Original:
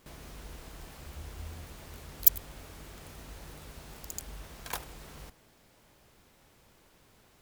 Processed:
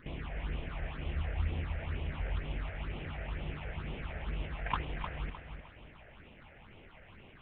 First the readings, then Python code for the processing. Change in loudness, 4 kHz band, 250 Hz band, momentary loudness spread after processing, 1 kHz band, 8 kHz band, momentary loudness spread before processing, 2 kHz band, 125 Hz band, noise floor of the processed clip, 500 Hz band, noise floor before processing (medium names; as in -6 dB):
-9.5 dB, -1.0 dB, +7.0 dB, 19 LU, +6.0 dB, under -40 dB, 25 LU, +7.0 dB, +10.0 dB, -56 dBFS, +5.0 dB, -63 dBFS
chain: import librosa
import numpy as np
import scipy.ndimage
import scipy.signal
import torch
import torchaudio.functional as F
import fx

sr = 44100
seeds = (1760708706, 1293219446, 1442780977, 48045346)

y = fx.cvsd(x, sr, bps=16000)
y = fx.phaser_stages(y, sr, stages=6, low_hz=270.0, high_hz=1600.0, hz=2.1, feedback_pct=25)
y = fx.echo_feedback(y, sr, ms=306, feedback_pct=34, wet_db=-8.0)
y = y * 10.0 ** (8.5 / 20.0)